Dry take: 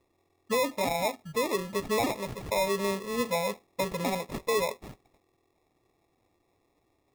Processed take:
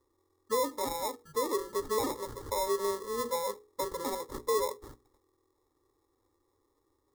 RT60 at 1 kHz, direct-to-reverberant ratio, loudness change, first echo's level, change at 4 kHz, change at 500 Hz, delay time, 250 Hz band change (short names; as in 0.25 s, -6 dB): none, none, -3.5 dB, none, -5.0 dB, -2.5 dB, none, -7.0 dB